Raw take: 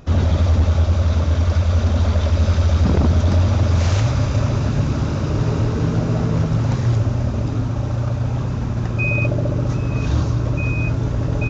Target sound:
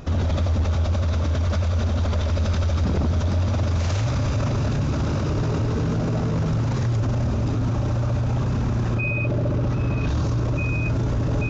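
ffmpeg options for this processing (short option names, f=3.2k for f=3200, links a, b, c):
-filter_complex "[0:a]asettb=1/sr,asplit=3[a][b][c];[a]atrim=end=8.954[d];[b]atrim=start=8.95:end=10.09,asetpts=PTS-STARTPTS,afade=t=in:d=0.004:c=qsin,afade=t=out:st=1.136:d=0.004:c=qsin,acrossover=split=4800[e][f];[f]acompressor=threshold=-59dB:ratio=4:attack=1:release=60[g];[e][g]amix=inputs=2:normalize=0[h];[c]atrim=start=10.086[i];[d][h]acrossfade=d=0.004:c1=hsin:c2=qsin[j];[j][i]acrossfade=d=0.004:c1=qsin:c2=hsin,alimiter=limit=-20.5dB:level=0:latency=1:release=13,volume=4dB"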